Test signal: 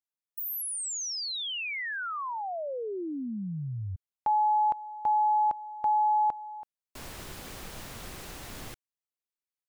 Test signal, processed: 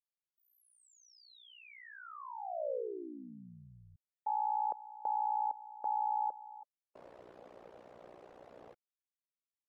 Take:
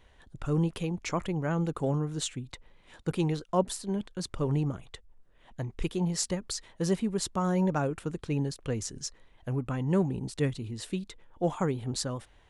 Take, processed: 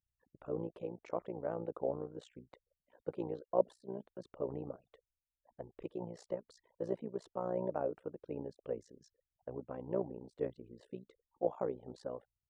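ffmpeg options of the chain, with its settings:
-af "afftfilt=real='re*gte(hypot(re,im),0.00355)':imag='im*gte(hypot(re,im),0.00355)':win_size=1024:overlap=0.75,bandpass=f=550:t=q:w=2.4:csg=0,tremolo=f=60:d=0.857,volume=1.26"

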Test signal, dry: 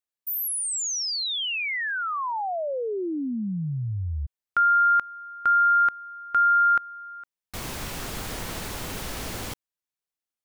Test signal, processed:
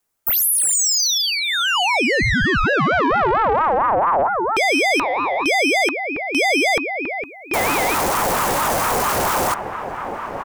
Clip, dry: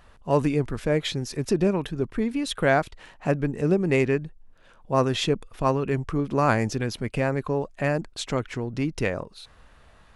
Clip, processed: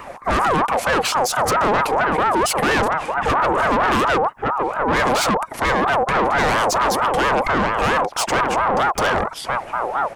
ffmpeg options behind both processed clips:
-filter_complex "[0:a]lowshelf=f=430:g=7,acrossover=split=260|780|4300[s0][s1][s2][s3];[s0]asoftclip=type=hard:threshold=0.0708[s4];[s3]aecho=1:1:4.5:0.43[s5];[s4][s1][s2][s5]amix=inputs=4:normalize=0,highpass=f=60:w=0.5412,highpass=f=60:w=1.3066,asplit=2[s6][s7];[s7]adelay=1166,volume=0.251,highshelf=f=4000:g=-26.2[s8];[s6][s8]amix=inputs=2:normalize=0,apsyclip=10.6,equalizer=f=3200:w=1.4:g=-10,asoftclip=type=tanh:threshold=0.224,aeval=exprs='val(0)*sin(2*PI*870*n/s+870*0.3/4.4*sin(2*PI*4.4*n/s))':c=same"

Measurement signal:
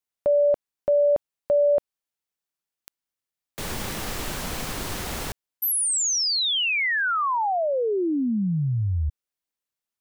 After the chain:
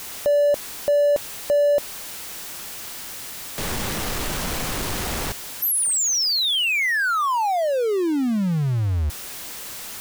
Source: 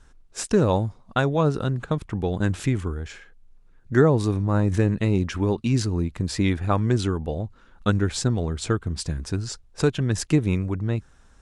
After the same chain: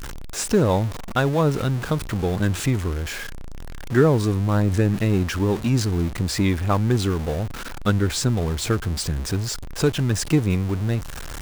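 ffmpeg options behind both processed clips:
-af "aeval=exprs='val(0)+0.5*0.0447*sgn(val(0))':c=same"

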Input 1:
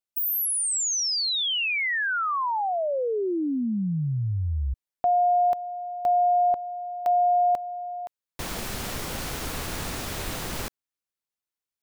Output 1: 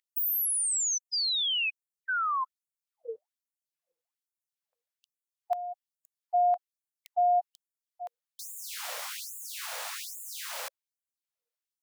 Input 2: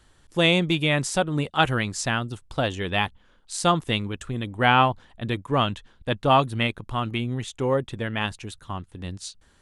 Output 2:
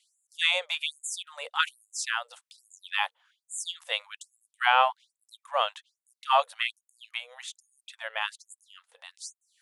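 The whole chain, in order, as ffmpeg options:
-af "aeval=exprs='val(0)+0.0158*(sin(2*PI*60*n/s)+sin(2*PI*2*60*n/s)/2+sin(2*PI*3*60*n/s)/3+sin(2*PI*4*60*n/s)/4+sin(2*PI*5*60*n/s)/5)':c=same,afftfilt=real='re*gte(b*sr/1024,450*pow(6800/450,0.5+0.5*sin(2*PI*1.2*pts/sr)))':imag='im*gte(b*sr/1024,450*pow(6800/450,0.5+0.5*sin(2*PI*1.2*pts/sr)))':win_size=1024:overlap=0.75,volume=0.75"

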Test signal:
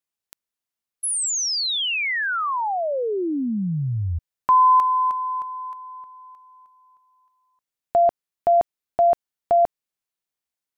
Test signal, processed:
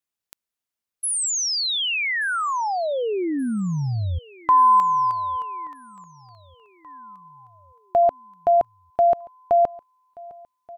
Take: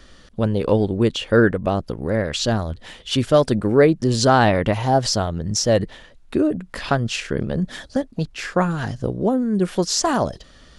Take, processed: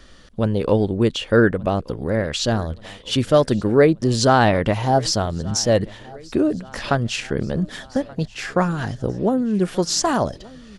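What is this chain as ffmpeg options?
-af "aecho=1:1:1179|2358|3537|4716:0.0708|0.0396|0.0222|0.0124"

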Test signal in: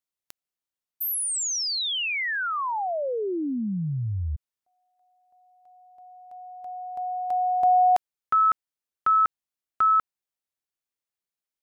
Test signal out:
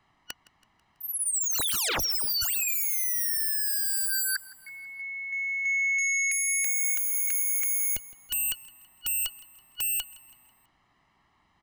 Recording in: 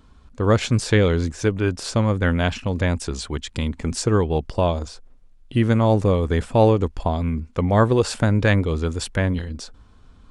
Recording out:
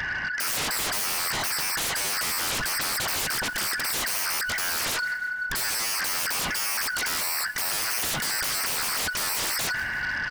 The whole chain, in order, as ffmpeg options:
-filter_complex "[0:a]afftfilt=real='real(if(lt(b,272),68*(eq(floor(b/68),0)*2+eq(floor(b/68),1)*0+eq(floor(b/68),2)*3+eq(floor(b/68),3)*1)+mod(b,68),b),0)':imag='imag(if(lt(b,272),68*(eq(floor(b/68),0)*2+eq(floor(b/68),1)*0+eq(floor(b/68),2)*3+eq(floor(b/68),3)*1)+mod(b,68),b),0)':win_size=2048:overlap=0.75,lowpass=1700,aecho=1:1:1:0.78,areverse,acompressor=threshold=0.02:ratio=5:attack=3.7:release=94:knee=1:detection=rms,areverse,alimiter=level_in=2.99:limit=0.0631:level=0:latency=1:release=27,volume=0.335,acontrast=59,aeval=exprs='0.0447*sin(PI/2*8.91*val(0)/0.0447)':c=same,asplit=2[s0][s1];[s1]aecho=0:1:164|328|492|656:0.0944|0.0472|0.0236|0.0118[s2];[s0][s2]amix=inputs=2:normalize=0,volume=1.33"

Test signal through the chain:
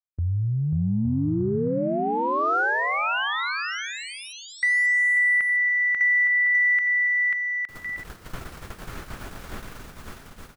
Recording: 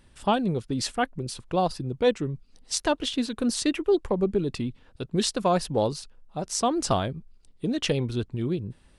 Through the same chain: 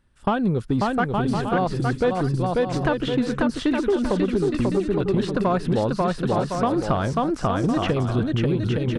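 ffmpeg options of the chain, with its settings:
-filter_complex "[0:a]lowshelf=f=410:g=6.5,agate=range=0.158:threshold=0.0178:ratio=16:detection=peak,equalizer=f=1400:t=o:w=0.89:g=8,aecho=1:1:540|864|1058|1175|1245:0.631|0.398|0.251|0.158|0.1,acompressor=threshold=0.0891:ratio=6,asoftclip=type=tanh:threshold=0.15,aeval=exprs='0.141*(cos(1*acos(clip(val(0)/0.141,-1,1)))-cos(1*PI/2))+0.00447*(cos(3*acos(clip(val(0)/0.141,-1,1)))-cos(3*PI/2))+0.00178*(cos(7*acos(clip(val(0)/0.141,-1,1)))-cos(7*PI/2))':c=same,acrossover=split=3100[s0][s1];[s1]acompressor=threshold=0.00316:ratio=4:attack=1:release=60[s2];[s0][s2]amix=inputs=2:normalize=0,volume=1.78"

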